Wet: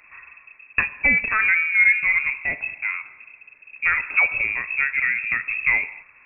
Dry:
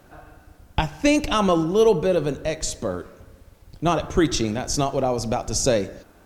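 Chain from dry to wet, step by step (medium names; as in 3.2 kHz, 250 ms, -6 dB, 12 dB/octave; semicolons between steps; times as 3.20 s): frequency inversion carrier 2.6 kHz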